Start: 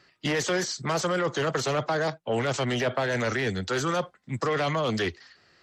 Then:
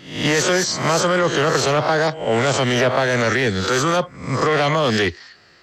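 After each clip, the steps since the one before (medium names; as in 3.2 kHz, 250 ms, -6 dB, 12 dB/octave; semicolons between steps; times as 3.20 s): reverse spectral sustain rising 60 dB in 0.55 s; trim +7.5 dB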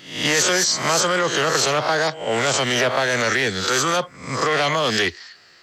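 tilt EQ +2 dB/octave; trim -1.5 dB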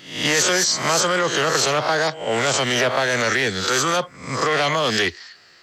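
no audible change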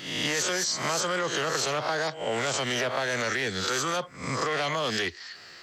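compression 2.5:1, threshold -35 dBFS, peak gain reduction 13 dB; trim +3.5 dB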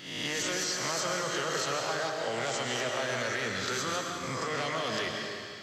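reverberation RT60 2.2 s, pre-delay 85 ms, DRR 1.5 dB; trim -6 dB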